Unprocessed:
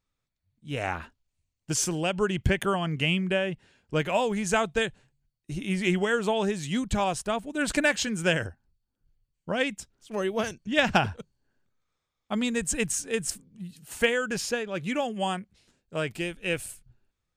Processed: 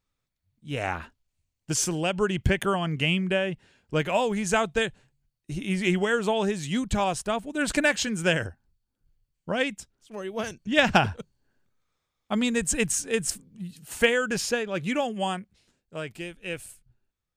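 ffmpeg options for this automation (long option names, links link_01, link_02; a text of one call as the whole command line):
ffmpeg -i in.wav -af "volume=11dB,afade=type=out:start_time=9.58:duration=0.65:silence=0.375837,afade=type=in:start_time=10.23:duration=0.49:silence=0.316228,afade=type=out:start_time=14.82:duration=1.2:silence=0.421697" out.wav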